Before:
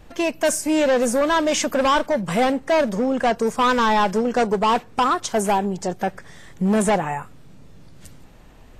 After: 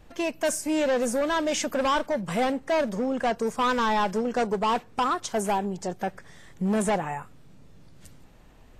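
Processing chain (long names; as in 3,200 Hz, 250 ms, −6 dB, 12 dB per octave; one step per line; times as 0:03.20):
0:01.16–0:01.67: notch filter 1,100 Hz, Q 7.1
level −6 dB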